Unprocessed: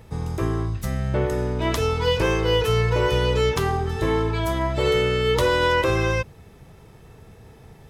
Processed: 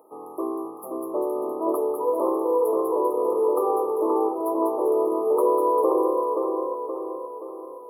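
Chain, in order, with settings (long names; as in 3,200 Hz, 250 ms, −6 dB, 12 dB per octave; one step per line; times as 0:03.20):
Chebyshev high-pass filter 310 Hz, order 4
echo with a time of its own for lows and highs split 1,300 Hz, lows 525 ms, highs 197 ms, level −3.5 dB
brick-wall band-stop 1,300–10,000 Hz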